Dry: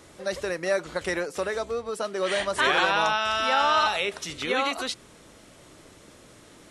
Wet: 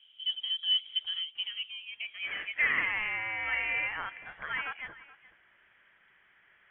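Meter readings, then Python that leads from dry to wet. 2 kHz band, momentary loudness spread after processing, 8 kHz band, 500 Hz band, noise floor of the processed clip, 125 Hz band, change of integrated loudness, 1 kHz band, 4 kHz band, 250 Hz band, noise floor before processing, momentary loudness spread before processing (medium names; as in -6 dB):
-3.5 dB, 12 LU, under -40 dB, -26.0 dB, -65 dBFS, -13.5 dB, -6.0 dB, -17.0 dB, -1.0 dB, -20.5 dB, -52 dBFS, 10 LU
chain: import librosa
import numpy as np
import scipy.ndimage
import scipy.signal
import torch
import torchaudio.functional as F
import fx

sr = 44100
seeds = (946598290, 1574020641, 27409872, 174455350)

y = fx.filter_sweep_bandpass(x, sr, from_hz=530.0, to_hz=1800.0, start_s=0.97, end_s=2.8, q=3.9)
y = y + 10.0 ** (-18.5 / 20.0) * np.pad(y, (int(424 * sr / 1000.0), 0))[:len(y)]
y = fx.freq_invert(y, sr, carrier_hz=3600)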